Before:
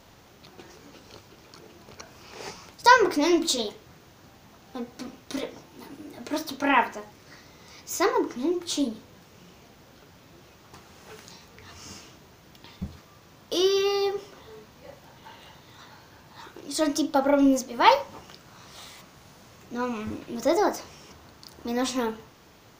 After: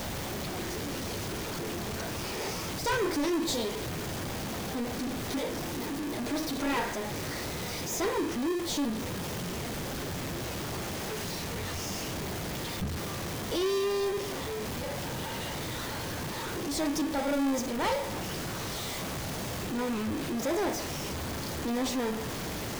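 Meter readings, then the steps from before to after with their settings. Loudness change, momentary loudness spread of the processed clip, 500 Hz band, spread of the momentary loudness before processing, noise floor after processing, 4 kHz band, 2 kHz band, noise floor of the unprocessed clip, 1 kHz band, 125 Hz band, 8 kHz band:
-8.0 dB, 6 LU, -4.5 dB, 23 LU, -36 dBFS, -2.0 dB, -5.0 dB, -54 dBFS, -8.5 dB, +11.5 dB, +0.5 dB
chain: jump at every zero crossing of -24.5 dBFS; in parallel at -4 dB: sample-and-hold 31×; on the sum: saturation -17.5 dBFS, distortion -10 dB; trim -7.5 dB

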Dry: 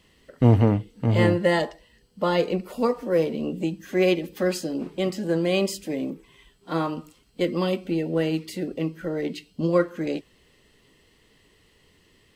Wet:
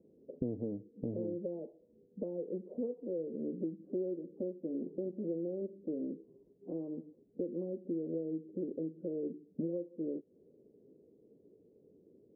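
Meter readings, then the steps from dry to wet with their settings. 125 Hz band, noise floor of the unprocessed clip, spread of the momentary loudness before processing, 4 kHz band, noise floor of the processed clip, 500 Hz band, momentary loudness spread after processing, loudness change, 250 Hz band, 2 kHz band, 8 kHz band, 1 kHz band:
-22.5 dB, -61 dBFS, 11 LU, under -40 dB, -67 dBFS, -14.5 dB, 6 LU, -15.0 dB, -13.0 dB, under -40 dB, under -35 dB, under -35 dB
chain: high-pass 260 Hz 12 dB/octave; compression 5:1, threshold -39 dBFS, peak gain reduction 20.5 dB; steep low-pass 510 Hz 36 dB/octave; trim +4 dB

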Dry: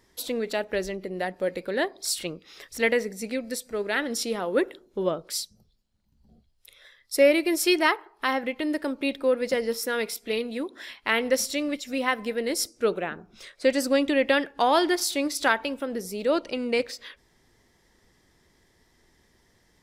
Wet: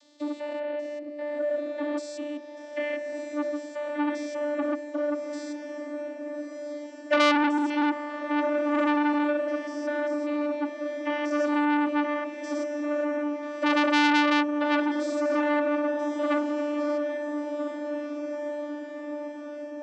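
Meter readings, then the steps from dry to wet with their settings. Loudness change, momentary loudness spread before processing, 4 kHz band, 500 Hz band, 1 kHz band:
-1.5 dB, 10 LU, -5.0 dB, -2.0 dB, +1.5 dB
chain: spectrogram pixelated in time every 200 ms; dynamic bell 4.5 kHz, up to -5 dB, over -51 dBFS, Q 1.7; vocoder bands 32, saw 295 Hz; echo that smears into a reverb 1369 ms, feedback 58%, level -8 dB; transformer saturation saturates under 2.1 kHz; trim +8 dB

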